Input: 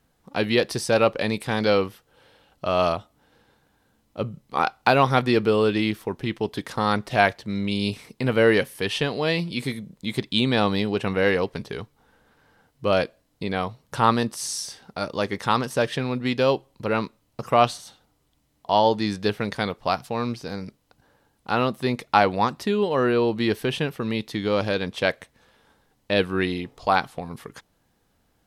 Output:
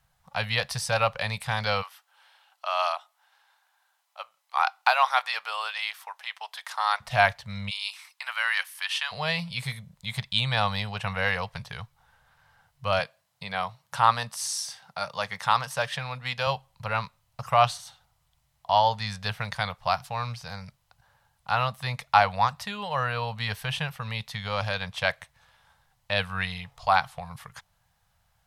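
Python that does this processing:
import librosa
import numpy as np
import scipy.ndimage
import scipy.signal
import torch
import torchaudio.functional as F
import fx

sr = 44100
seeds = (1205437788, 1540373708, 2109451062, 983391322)

y = fx.highpass(x, sr, hz=710.0, slope=24, at=(1.81, 7.0), fade=0.02)
y = fx.highpass(y, sr, hz=1000.0, slope=24, at=(7.69, 9.11), fade=0.02)
y = fx.highpass(y, sr, hz=160.0, slope=12, at=(12.99, 16.47))
y = scipy.signal.sosfilt(scipy.signal.cheby1(2, 1.0, [130.0, 770.0], 'bandstop', fs=sr, output='sos'), y)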